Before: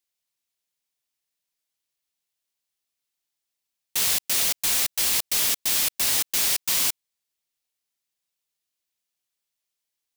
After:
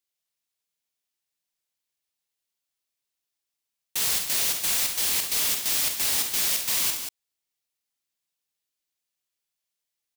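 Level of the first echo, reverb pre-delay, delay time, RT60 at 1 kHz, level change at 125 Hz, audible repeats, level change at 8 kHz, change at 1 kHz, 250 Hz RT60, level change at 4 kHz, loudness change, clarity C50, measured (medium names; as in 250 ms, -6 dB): -8.5 dB, no reverb, 46 ms, no reverb, -1.5 dB, 2, -1.5 dB, -1.5 dB, no reverb, -1.5 dB, -1.5 dB, no reverb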